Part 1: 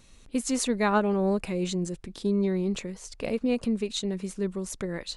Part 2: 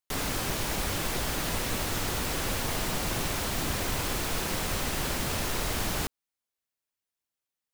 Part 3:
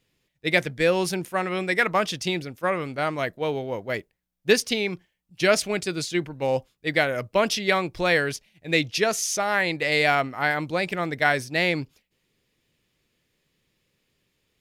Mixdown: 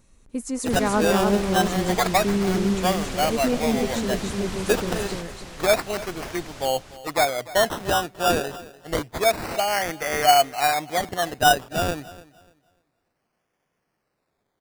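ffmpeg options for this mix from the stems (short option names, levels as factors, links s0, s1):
-filter_complex "[0:a]equalizer=f=3500:t=o:w=1.4:g=-10,volume=0.841,asplit=3[s0][s1][s2];[s1]volume=0.631[s3];[1:a]lowpass=8000,adelay=600,volume=0.501,asplit=2[s4][s5];[s5]volume=0.224[s6];[2:a]highpass=f=220:p=1,equalizer=f=720:t=o:w=0.38:g=14.5,acrusher=samples=16:mix=1:aa=0.000001:lfo=1:lforange=9.6:lforate=0.28,adelay=200,volume=0.447,asplit=2[s7][s8];[s8]volume=0.112[s9];[s2]apad=whole_len=367696[s10];[s4][s10]sidechaingate=range=0.398:threshold=0.00251:ratio=16:detection=peak[s11];[s3][s6][s9]amix=inputs=3:normalize=0,aecho=0:1:295|590|885|1180:1|0.24|0.0576|0.0138[s12];[s0][s11][s7][s12]amix=inputs=4:normalize=0,dynaudnorm=f=130:g=11:m=1.5"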